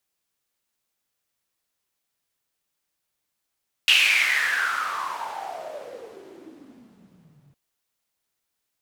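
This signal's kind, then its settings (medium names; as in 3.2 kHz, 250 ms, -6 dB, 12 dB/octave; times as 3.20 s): swept filtered noise white, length 3.66 s bandpass, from 2.9 kHz, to 130 Hz, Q 8.1, exponential, gain ramp -28 dB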